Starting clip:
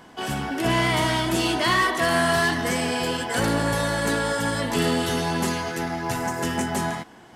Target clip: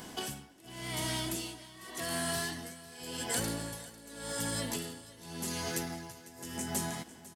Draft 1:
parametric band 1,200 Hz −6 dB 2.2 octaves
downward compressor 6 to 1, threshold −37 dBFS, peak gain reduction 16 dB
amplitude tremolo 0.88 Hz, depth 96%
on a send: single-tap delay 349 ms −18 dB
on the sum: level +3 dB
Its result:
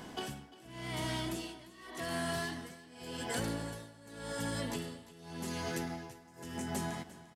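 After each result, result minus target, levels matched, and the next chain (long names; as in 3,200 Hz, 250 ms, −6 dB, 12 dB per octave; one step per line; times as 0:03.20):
echo 150 ms early; 8,000 Hz band −6.0 dB
parametric band 1,200 Hz −6 dB 2.2 octaves
downward compressor 6 to 1, threshold −37 dBFS, peak gain reduction 16 dB
amplitude tremolo 0.88 Hz, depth 96%
on a send: single-tap delay 499 ms −18 dB
on the sum: level +3 dB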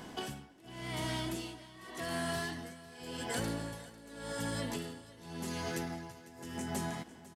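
8,000 Hz band −5.5 dB
parametric band 1,200 Hz −6 dB 2.2 octaves
downward compressor 6 to 1, threshold −37 dBFS, peak gain reduction 16 dB
high-shelf EQ 4,700 Hz +11.5 dB
amplitude tremolo 0.88 Hz, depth 96%
on a send: single-tap delay 499 ms −18 dB
on the sum: level +3 dB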